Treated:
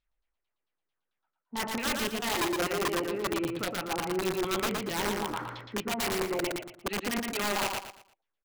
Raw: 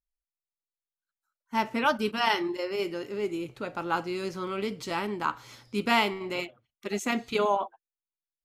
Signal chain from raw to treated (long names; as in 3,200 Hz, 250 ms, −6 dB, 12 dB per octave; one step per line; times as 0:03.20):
low-pass filter 10,000 Hz 24 dB per octave
reversed playback
downward compressor 5 to 1, threshold −40 dBFS, peak gain reduction 19.5 dB
reversed playback
auto-filter low-pass saw down 4.5 Hz 330–3,900 Hz
wrap-around overflow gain 32.5 dB
on a send: repeating echo 116 ms, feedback 30%, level −3.5 dB
on the sum: level +8 dB